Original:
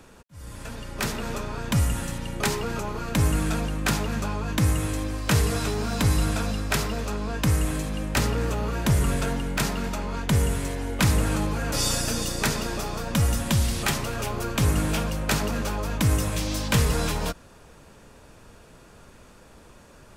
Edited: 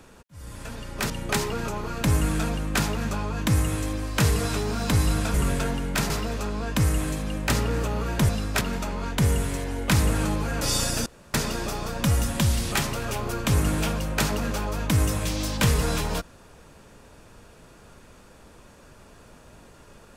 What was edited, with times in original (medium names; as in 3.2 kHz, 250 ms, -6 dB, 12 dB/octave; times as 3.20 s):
1.10–2.21 s: delete
6.45–6.77 s: swap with 8.96–9.72 s
12.17–12.45 s: room tone